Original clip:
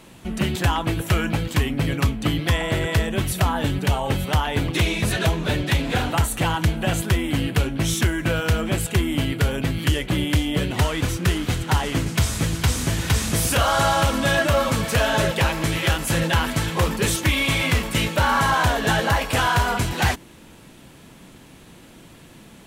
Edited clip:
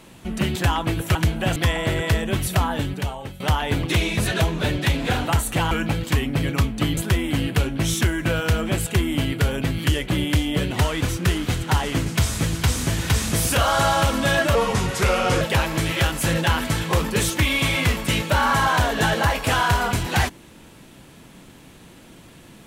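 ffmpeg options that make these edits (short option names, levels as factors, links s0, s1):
-filter_complex "[0:a]asplit=8[s0][s1][s2][s3][s4][s5][s6][s7];[s0]atrim=end=1.152[s8];[s1]atrim=start=6.558:end=6.972[s9];[s2]atrim=start=2.408:end=4.25,asetpts=PTS-STARTPTS,afade=t=out:st=1.062:d=0.78:silence=0.112202[s10];[s3]atrim=start=4.25:end=6.562,asetpts=PTS-STARTPTS,afade=t=in:d=0.004:c=hsin:silence=0.112202[s11];[s4]atrim=start=1.148:end=2.412[s12];[s5]atrim=start=6.968:end=14.554[s13];[s6]atrim=start=14.55:end=15.27,asetpts=PTS-STARTPTS,asetrate=37044,aresample=44100[s14];[s7]atrim=start=15.266[s15];[s8][s9]acrossfade=d=0.004:c1=hsin:c2=hsin[s16];[s10][s11]concat=n=2:v=0:a=1[s17];[s16][s17]acrossfade=d=0.004:c1=hsin:c2=hsin[s18];[s18][s12]acrossfade=d=0.004:c1=hsin:c2=hsin[s19];[s19][s13]acrossfade=d=0.004:c1=hsin:c2=hsin[s20];[s20][s14]acrossfade=d=0.004:c1=hsin:c2=hsin[s21];[s21][s15]acrossfade=d=0.004:c1=hsin:c2=hsin"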